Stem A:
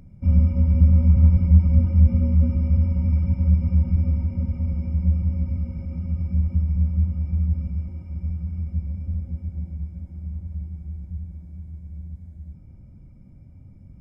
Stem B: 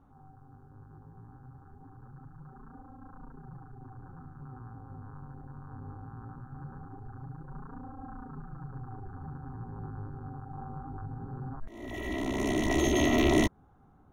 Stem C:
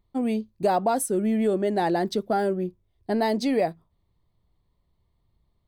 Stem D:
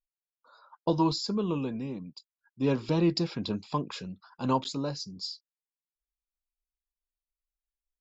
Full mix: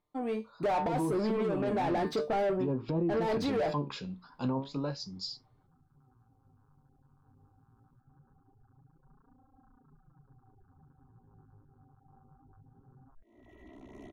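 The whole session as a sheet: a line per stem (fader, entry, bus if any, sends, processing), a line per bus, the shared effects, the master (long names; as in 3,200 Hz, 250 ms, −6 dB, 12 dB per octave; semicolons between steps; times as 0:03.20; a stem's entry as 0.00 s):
muted
−18.0 dB, 1.55 s, no send, high-shelf EQ 2,800 Hz −11.5 dB; reverb reduction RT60 0.6 s
−11.5 dB, 0.00 s, no send, automatic gain control gain up to 11 dB; tuned comb filter 150 Hz, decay 0.23 s, harmonics all, mix 80%; mid-hump overdrive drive 27 dB, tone 1,100 Hz, clips at −9.5 dBFS
+3.0 dB, 0.00 s, no send, treble cut that deepens with the level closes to 750 Hz, closed at −22.5 dBFS; flanger 0.35 Hz, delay 7.1 ms, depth 10 ms, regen +68%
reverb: not used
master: brickwall limiter −23.5 dBFS, peak gain reduction 8.5 dB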